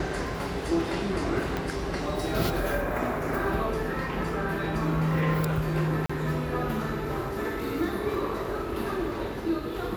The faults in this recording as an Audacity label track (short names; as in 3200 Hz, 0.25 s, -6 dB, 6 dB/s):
1.570000	1.570000	pop -16 dBFS
6.060000	6.090000	gap 35 ms